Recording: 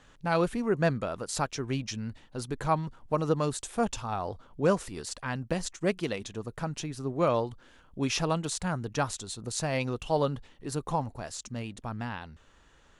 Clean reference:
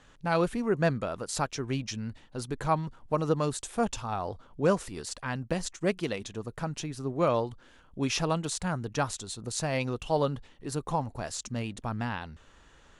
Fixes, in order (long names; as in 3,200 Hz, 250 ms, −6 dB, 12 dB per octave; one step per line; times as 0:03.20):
level 0 dB, from 0:11.14 +3 dB